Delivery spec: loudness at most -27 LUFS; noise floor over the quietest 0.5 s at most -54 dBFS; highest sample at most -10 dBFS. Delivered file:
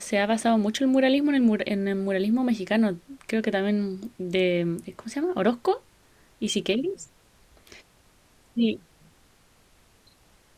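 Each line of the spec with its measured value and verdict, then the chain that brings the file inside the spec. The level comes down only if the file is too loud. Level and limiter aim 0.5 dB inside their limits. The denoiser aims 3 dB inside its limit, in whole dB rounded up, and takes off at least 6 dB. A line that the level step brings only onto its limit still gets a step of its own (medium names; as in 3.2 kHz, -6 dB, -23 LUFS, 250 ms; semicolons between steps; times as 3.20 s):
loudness -25.5 LUFS: fail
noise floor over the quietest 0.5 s -60 dBFS: pass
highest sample -8.5 dBFS: fail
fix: trim -2 dB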